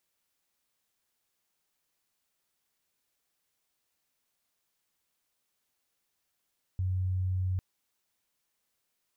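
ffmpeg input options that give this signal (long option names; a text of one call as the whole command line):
ffmpeg -f lavfi -i "aevalsrc='0.0447*sin(2*PI*92.6*t)':duration=0.8:sample_rate=44100" out.wav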